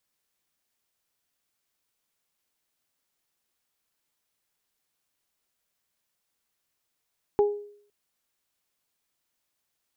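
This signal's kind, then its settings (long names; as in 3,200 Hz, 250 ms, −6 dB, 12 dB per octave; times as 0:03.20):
harmonic partials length 0.51 s, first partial 412 Hz, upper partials −9 dB, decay 0.59 s, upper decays 0.28 s, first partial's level −15.5 dB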